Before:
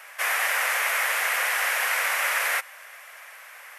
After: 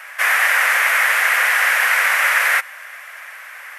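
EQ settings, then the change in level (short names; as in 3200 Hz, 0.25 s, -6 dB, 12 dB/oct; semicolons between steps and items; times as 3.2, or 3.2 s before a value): HPF 260 Hz 12 dB/oct; bell 1700 Hz +7.5 dB 1.2 oct; +3.5 dB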